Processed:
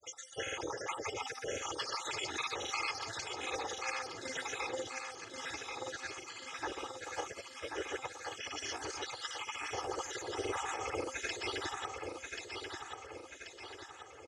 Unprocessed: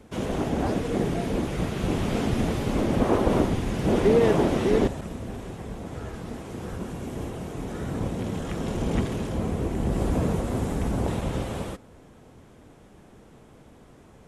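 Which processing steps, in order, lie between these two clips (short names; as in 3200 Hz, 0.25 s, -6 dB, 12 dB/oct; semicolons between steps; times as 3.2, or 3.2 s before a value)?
random spectral dropouts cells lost 68%; Chebyshev band-pass 130–6000 Hz, order 3; spectral gate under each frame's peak -10 dB weak; tone controls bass -9 dB, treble +4 dB; comb 2.4 ms, depth 70%; de-hum 260.7 Hz, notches 9; negative-ratio compressor -44 dBFS, ratio -1; grains, pitch spread up and down by 0 st; LFO notch square 0.31 Hz 510–4300 Hz; feedback echo 1.084 s, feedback 51%, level -5 dB; gain +6 dB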